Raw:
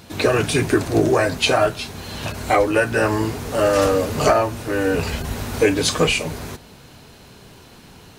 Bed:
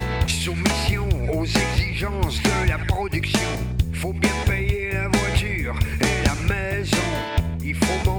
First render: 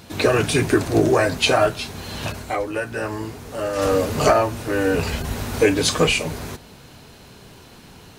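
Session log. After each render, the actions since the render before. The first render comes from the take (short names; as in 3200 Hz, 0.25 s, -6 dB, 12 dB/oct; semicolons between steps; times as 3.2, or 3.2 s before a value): 2.3–3.93 dip -8 dB, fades 0.17 s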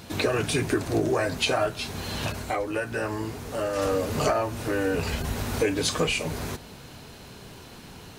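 compressor 2:1, threshold -27 dBFS, peak gain reduction 9 dB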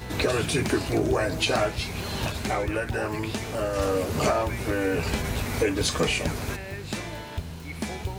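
add bed -12 dB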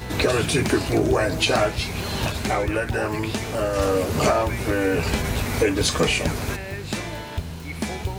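gain +4 dB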